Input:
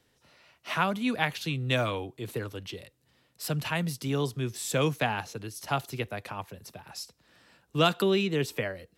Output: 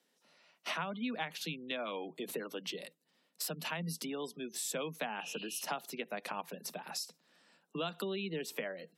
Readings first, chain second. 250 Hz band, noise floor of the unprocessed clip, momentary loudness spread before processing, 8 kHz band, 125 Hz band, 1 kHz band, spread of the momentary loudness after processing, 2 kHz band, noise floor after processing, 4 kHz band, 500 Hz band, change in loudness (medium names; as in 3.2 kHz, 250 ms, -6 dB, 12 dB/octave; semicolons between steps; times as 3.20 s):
-10.0 dB, -70 dBFS, 15 LU, -2.0 dB, -16.5 dB, -9.5 dB, 5 LU, -9.0 dB, -77 dBFS, -7.0 dB, -9.5 dB, -9.5 dB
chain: spectral replace 5.21–5.62 s, 2.4–5 kHz both; gate -54 dBFS, range -10 dB; spectral gate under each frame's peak -30 dB strong; treble shelf 3.1 kHz +6 dB; compression 6:1, threshold -37 dBFS, peak gain reduction 19 dB; rippled Chebyshev high-pass 160 Hz, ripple 3 dB; trim +3.5 dB